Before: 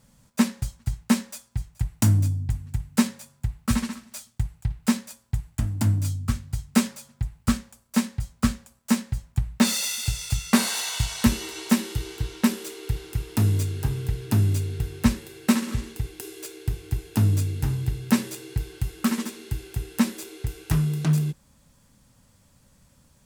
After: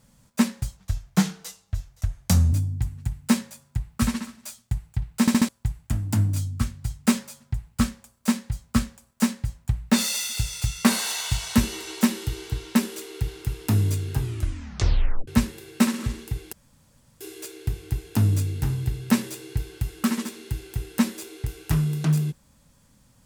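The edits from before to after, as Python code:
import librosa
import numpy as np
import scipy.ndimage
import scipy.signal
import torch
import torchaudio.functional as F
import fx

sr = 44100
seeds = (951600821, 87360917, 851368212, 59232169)

y = fx.edit(x, sr, fx.speed_span(start_s=0.77, length_s=1.44, speed=0.82),
    fx.stutter_over(start_s=4.89, slice_s=0.07, count=4),
    fx.tape_stop(start_s=13.88, length_s=1.08),
    fx.insert_room_tone(at_s=16.21, length_s=0.68), tone=tone)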